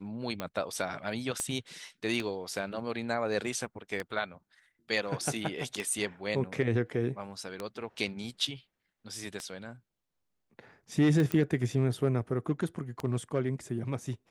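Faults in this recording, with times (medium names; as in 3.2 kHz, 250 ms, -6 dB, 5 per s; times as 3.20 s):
tick 33 1/3 rpm -19 dBFS
1.40 s: pop -18 dBFS
11.32 s: pop -16 dBFS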